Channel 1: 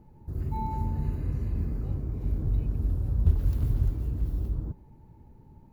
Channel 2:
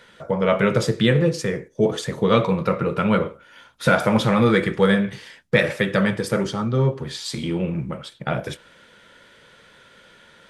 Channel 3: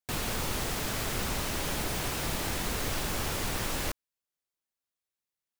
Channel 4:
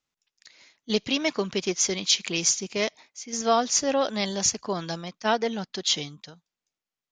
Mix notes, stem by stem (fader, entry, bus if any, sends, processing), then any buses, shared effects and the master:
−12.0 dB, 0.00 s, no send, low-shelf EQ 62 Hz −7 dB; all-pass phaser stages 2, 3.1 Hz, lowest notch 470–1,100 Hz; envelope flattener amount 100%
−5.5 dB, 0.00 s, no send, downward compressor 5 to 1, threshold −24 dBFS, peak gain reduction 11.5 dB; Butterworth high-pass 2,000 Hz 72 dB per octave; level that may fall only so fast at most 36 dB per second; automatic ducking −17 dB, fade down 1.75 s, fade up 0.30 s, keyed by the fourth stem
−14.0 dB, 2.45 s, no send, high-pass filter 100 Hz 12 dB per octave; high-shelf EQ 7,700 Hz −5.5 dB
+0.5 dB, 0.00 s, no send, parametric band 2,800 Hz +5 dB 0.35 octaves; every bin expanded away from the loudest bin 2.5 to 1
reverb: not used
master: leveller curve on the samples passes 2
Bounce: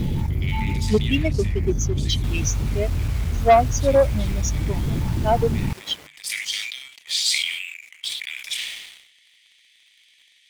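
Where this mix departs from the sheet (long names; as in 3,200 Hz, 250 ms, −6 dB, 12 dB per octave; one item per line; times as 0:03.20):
stem 2 −5.5 dB → +2.5 dB
stem 3: entry 2.45 s → 2.15 s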